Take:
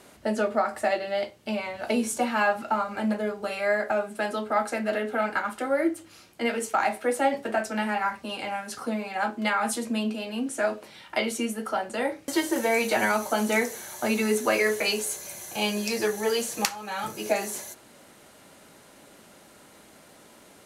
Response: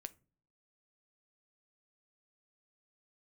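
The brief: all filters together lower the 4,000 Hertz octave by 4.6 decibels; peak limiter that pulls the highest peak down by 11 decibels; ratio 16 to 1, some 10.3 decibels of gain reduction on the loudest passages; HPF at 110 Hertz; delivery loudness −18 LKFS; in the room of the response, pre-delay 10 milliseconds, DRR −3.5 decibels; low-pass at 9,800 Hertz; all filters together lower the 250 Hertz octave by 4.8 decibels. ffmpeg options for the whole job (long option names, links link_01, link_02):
-filter_complex "[0:a]highpass=110,lowpass=9800,equalizer=frequency=250:width_type=o:gain=-5.5,equalizer=frequency=4000:width_type=o:gain=-6.5,acompressor=threshold=-30dB:ratio=16,alimiter=level_in=4dB:limit=-24dB:level=0:latency=1,volume=-4dB,asplit=2[link_01][link_02];[1:a]atrim=start_sample=2205,adelay=10[link_03];[link_02][link_03]afir=irnorm=-1:irlink=0,volume=8.5dB[link_04];[link_01][link_04]amix=inputs=2:normalize=0,volume=14.5dB"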